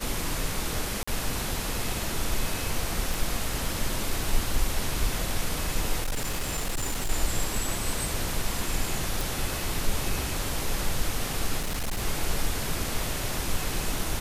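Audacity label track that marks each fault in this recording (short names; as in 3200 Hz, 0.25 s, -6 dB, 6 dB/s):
1.030000	1.070000	gap 45 ms
3.140000	3.140000	pop
6.020000	7.110000	clipped -24.5 dBFS
9.210000	9.210000	pop
11.590000	12.030000	clipped -25.5 dBFS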